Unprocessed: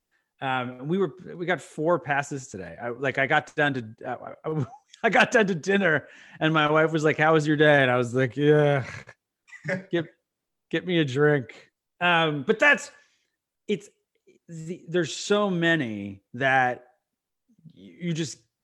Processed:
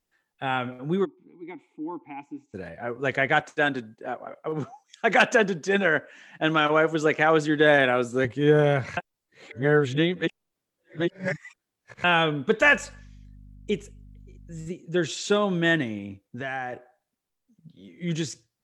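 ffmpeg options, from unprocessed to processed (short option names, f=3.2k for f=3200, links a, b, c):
-filter_complex "[0:a]asplit=3[a][b][c];[a]afade=t=out:st=1.04:d=0.02[d];[b]asplit=3[e][f][g];[e]bandpass=f=300:t=q:w=8,volume=0dB[h];[f]bandpass=f=870:t=q:w=8,volume=-6dB[i];[g]bandpass=f=2.24k:t=q:w=8,volume=-9dB[j];[h][i][j]amix=inputs=3:normalize=0,afade=t=in:st=1.04:d=0.02,afade=t=out:st=2.53:d=0.02[k];[c]afade=t=in:st=2.53:d=0.02[l];[d][k][l]amix=inputs=3:normalize=0,asettb=1/sr,asplit=3[m][n][o];[m]atrim=end=3.404[p];[n]atrim=start=3.4:end=8.25,asetpts=PTS-STARTPTS,afade=t=in:d=0.004:c=qsin,afade=t=out:st=4.846:d=0.004:c=qsin,highpass=190[q];[o]atrim=start=8.246[r];[p][q]acrossfade=d=0.004:c1=hsin:c2=qsin[s];[s][r]acrossfade=d=0.004:c1=qsin:c2=hsin,asettb=1/sr,asplit=3[t][u][v];[t]atrim=end=12.614[w];[u]atrim=start=12.61:end=14.68,asetpts=PTS-STARTPTS,afade=t=in:d=0.004:c=qsin,afade=t=out:st=2.066:d=0.004:c=qsin,aeval=exprs='val(0)+0.00501*(sin(2*PI*50*n/s)+sin(2*PI*2*50*n/s)/2+sin(2*PI*3*50*n/s)/3+sin(2*PI*4*50*n/s)/4+sin(2*PI*5*50*n/s)/5)':c=same[x];[v]atrim=start=14.676[y];[w][x]acrossfade=d=0.004:c1=hsin:c2=qsin[z];[z][y]acrossfade=d=0.004:c1=qsin:c2=hsin,asettb=1/sr,asplit=3[aa][ab][ac];[aa]atrim=end=15.984[ad];[ab]atrim=start=15.98:end=16.73,asetpts=PTS-STARTPTS,afade=t=in:d=0.004:c=qsin,afade=t=out:st=0.746:d=0.004:c=qsin,acompressor=threshold=-32dB:ratio=2.5:attack=3.2:release=140:knee=1:detection=peak[ae];[ac]atrim=start=16.726[af];[ad][ae]acrossfade=d=0.004:c1=hsin:c2=qsin[ag];[ag][af]acrossfade=d=0.004:c1=qsin:c2=hsin,asplit=3[ah][ai][aj];[ah]atrim=end=8.972[ak];[ai]atrim=start=8.968:end=12.042,asetpts=PTS-STARTPTS,areverse[al];[aj]atrim=start=12.038[am];[ak][al]acrossfade=d=0.004:c1=hsin:c2=hsin[an];[an][am]acrossfade=d=0.004:c1=hsin:c2=hsin"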